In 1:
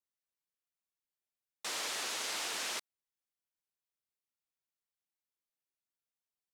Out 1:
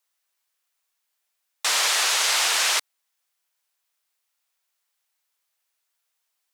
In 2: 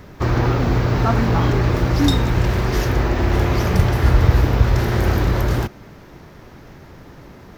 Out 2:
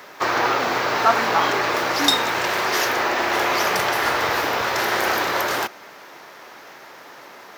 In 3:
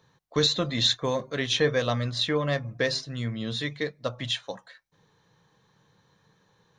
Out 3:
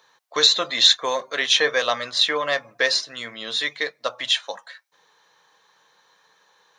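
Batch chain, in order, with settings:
high-pass 710 Hz 12 dB/octave; normalise loudness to -20 LUFS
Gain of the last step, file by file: +16.5 dB, +7.0 dB, +9.0 dB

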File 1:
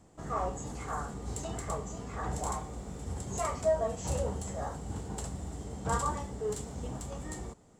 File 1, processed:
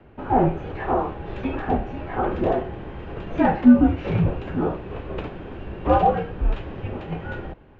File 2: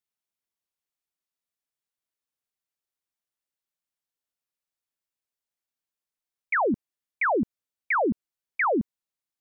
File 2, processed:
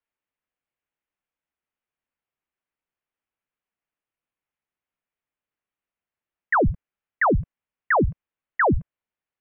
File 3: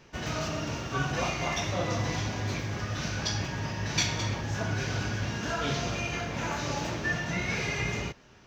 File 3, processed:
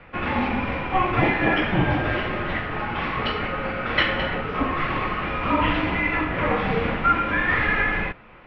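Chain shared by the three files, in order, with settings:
mistuned SSB -390 Hz 350–3200 Hz; normalise loudness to -23 LUFS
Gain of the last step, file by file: +15.5 dB, +5.0 dB, +12.0 dB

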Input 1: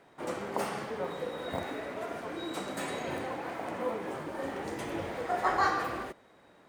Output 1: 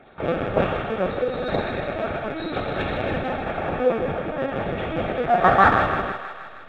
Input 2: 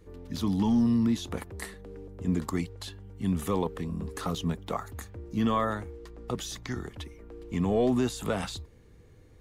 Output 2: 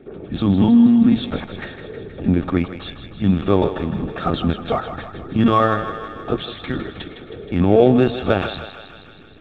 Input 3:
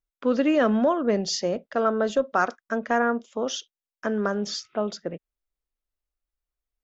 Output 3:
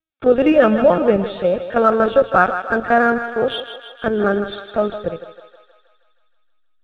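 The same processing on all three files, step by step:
feedback comb 100 Hz, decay 0.5 s, harmonics all, mix 40%; LPC vocoder at 8 kHz pitch kept; comb of notches 1 kHz; in parallel at -11 dB: hysteresis with a dead band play -32.5 dBFS; on the sum: hum notches 60/120 Hz; on a send: thinning echo 158 ms, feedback 68%, high-pass 550 Hz, level -9 dB; on the sum: peak normalisation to -1.5 dBFS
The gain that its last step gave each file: +15.5 dB, +15.0 dB, +11.5 dB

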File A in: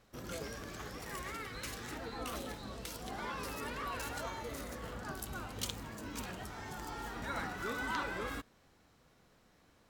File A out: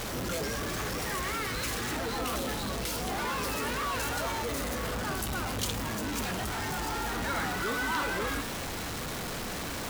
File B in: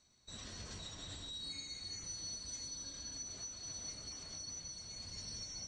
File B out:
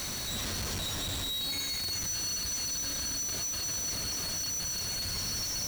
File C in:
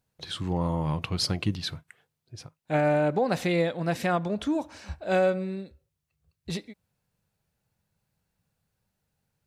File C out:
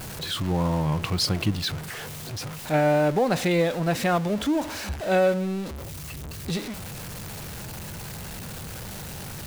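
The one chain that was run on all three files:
jump at every zero crossing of -31.5 dBFS; trim +1.5 dB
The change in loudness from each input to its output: +9.5 LU, +13.0 LU, +1.0 LU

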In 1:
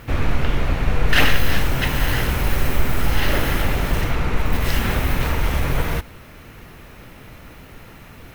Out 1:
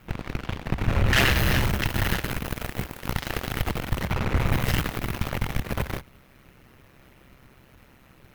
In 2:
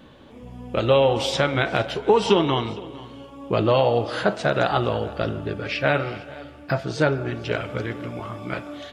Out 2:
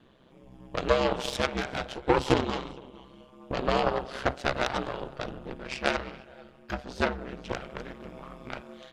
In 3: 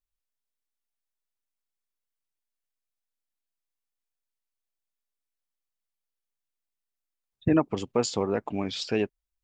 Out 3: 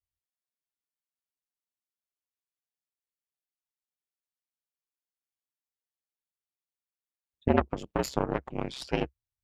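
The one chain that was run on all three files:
Chebyshev shaper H 5 -27 dB, 7 -20 dB, 8 -17 dB, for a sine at -1 dBFS; ring modulator 66 Hz; peak normalisation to -6 dBFS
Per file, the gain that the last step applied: -3.5 dB, -2.5 dB, +0.5 dB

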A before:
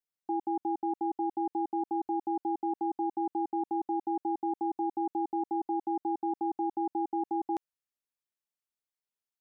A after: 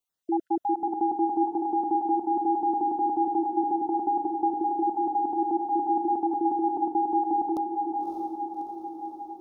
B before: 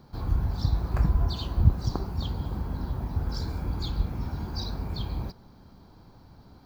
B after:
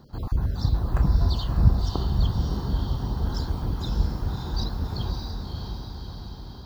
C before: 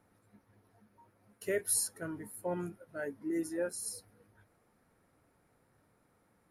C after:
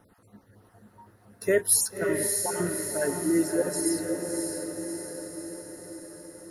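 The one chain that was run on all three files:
random holes in the spectrogram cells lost 26%; band-stop 2.3 kHz, Q 5.4; echo that smears into a reverb 601 ms, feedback 61%, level -4 dB; normalise loudness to -27 LUFS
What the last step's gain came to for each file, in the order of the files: +7.0 dB, +2.0 dB, +10.5 dB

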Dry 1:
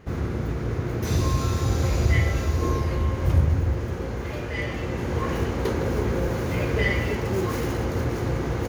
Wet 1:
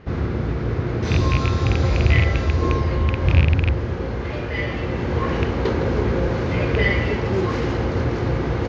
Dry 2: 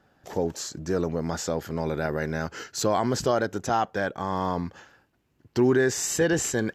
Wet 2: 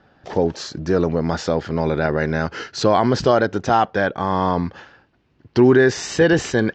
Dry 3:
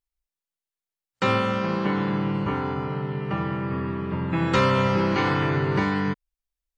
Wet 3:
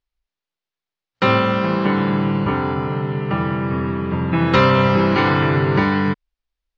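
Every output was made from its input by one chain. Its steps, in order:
rattle on loud lows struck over -17 dBFS, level -16 dBFS; low-pass 5 kHz 24 dB/octave; peak normalisation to -3 dBFS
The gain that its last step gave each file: +4.0 dB, +8.0 dB, +6.5 dB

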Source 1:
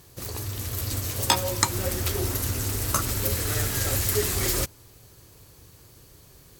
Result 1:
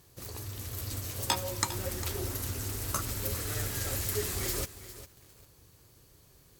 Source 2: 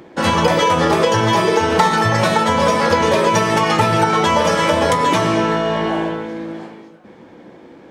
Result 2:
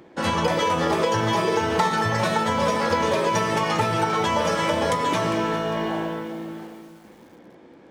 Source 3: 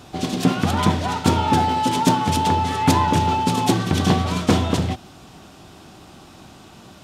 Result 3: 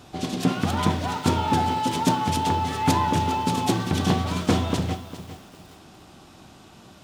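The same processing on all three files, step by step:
bit-crushed delay 403 ms, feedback 35%, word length 6-bit, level -13 dB; peak normalisation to -9 dBFS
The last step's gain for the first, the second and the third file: -8.0 dB, -7.5 dB, -4.5 dB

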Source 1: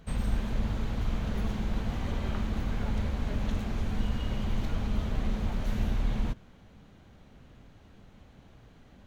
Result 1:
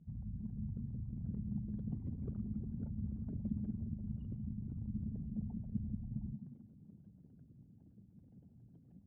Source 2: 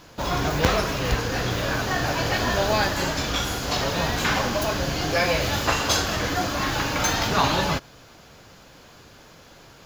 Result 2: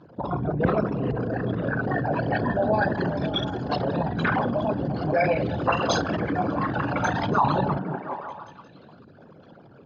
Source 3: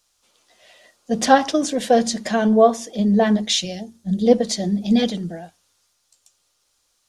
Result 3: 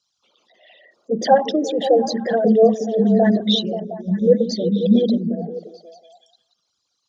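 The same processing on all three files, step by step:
resonances exaggerated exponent 3; Chebyshev band-pass 150–3600 Hz, order 2; repeats whose band climbs or falls 178 ms, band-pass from 200 Hz, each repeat 0.7 oct, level -3 dB; trim +1 dB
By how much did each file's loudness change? -9.5 LU, -2.0 LU, +1.0 LU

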